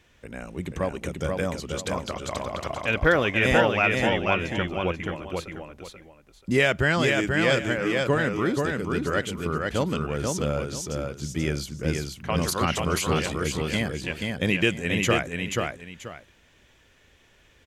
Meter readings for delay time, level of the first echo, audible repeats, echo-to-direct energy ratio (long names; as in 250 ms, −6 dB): 484 ms, −3.5 dB, 2, −3.0 dB